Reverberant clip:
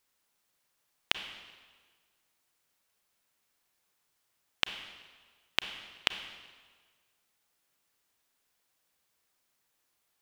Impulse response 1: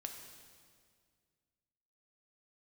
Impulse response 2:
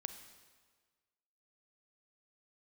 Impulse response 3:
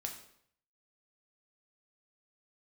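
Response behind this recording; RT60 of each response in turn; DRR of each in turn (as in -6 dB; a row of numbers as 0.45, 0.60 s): 2; 2.0, 1.5, 0.65 s; 3.5, 8.5, 2.0 dB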